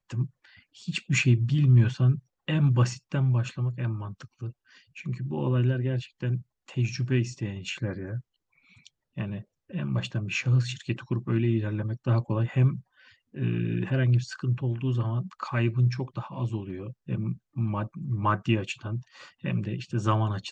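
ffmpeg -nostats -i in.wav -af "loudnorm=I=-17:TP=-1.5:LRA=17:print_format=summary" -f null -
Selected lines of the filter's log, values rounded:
Input Integrated:    -28.1 LUFS
Input True Peak:     -10.3 dBTP
Input LRA:             6.4 LU
Input Threshold:     -38.6 LUFS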